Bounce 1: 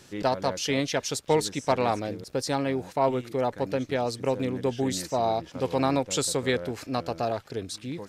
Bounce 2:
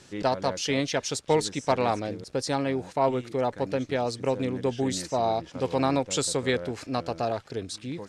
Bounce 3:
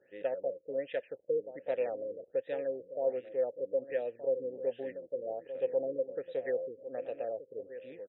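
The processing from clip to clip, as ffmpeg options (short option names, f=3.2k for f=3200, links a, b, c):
-af "lowpass=f=10k:w=0.5412,lowpass=f=10k:w=1.3066"
-filter_complex "[0:a]asplit=3[a][b][c];[a]bandpass=f=530:t=q:w=8,volume=0dB[d];[b]bandpass=f=1.84k:t=q:w=8,volume=-6dB[e];[c]bandpass=f=2.48k:t=q:w=8,volume=-9dB[f];[d][e][f]amix=inputs=3:normalize=0,asplit=2[g][h];[h]adelay=1224,volume=-12dB,highshelf=f=4k:g=-27.6[i];[g][i]amix=inputs=2:normalize=0,afftfilt=real='re*lt(b*sr/1024,540*pow(4000/540,0.5+0.5*sin(2*PI*1.3*pts/sr)))':imag='im*lt(b*sr/1024,540*pow(4000/540,0.5+0.5*sin(2*PI*1.3*pts/sr)))':win_size=1024:overlap=0.75"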